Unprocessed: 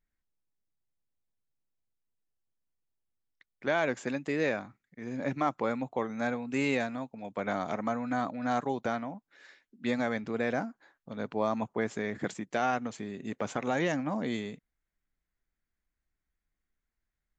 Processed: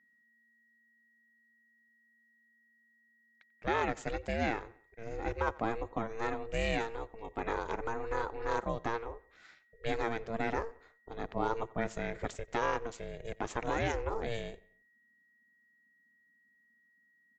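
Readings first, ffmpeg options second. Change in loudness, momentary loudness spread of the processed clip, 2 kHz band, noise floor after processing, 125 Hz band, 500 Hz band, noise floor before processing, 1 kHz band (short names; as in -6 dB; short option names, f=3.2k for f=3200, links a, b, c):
-3.5 dB, 11 LU, -3.0 dB, -70 dBFS, -1.5 dB, -3.0 dB, under -85 dBFS, -1.5 dB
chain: -filter_complex "[0:a]aeval=exprs='val(0)*sin(2*PI*230*n/s)':c=same,asplit=2[a][b];[b]adelay=91,lowpass=f=3.6k:p=1,volume=-21.5dB,asplit=2[c][d];[d]adelay=91,lowpass=f=3.6k:p=1,volume=0.45,asplit=2[e][f];[f]adelay=91,lowpass=f=3.6k:p=1,volume=0.45[g];[a][c][e][g]amix=inputs=4:normalize=0,aeval=exprs='val(0)+0.000447*sin(2*PI*1900*n/s)':c=same"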